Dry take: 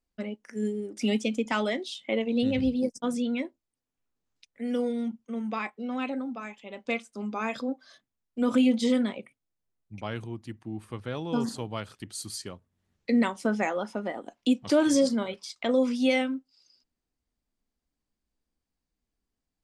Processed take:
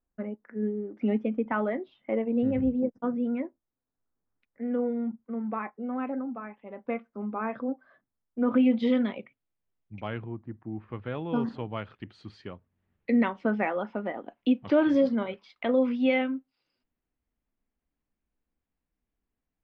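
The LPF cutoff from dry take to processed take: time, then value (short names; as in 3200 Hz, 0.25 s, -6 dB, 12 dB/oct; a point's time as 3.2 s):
LPF 24 dB/oct
8.39 s 1700 Hz
8.87 s 3200 Hz
10.06 s 3200 Hz
10.48 s 1400 Hz
11.04 s 2800 Hz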